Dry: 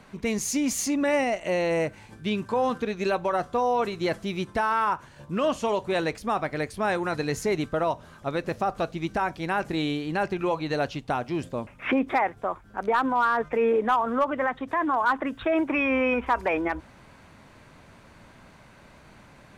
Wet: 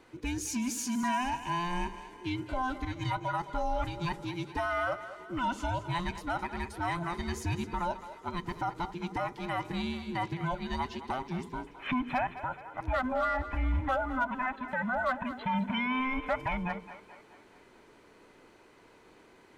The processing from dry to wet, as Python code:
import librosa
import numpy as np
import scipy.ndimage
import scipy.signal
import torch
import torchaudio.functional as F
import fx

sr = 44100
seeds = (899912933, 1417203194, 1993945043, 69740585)

y = fx.band_invert(x, sr, width_hz=500)
y = fx.echo_split(y, sr, split_hz=400.0, low_ms=81, high_ms=214, feedback_pct=52, wet_db=-13.0)
y = y * librosa.db_to_amplitude(-7.0)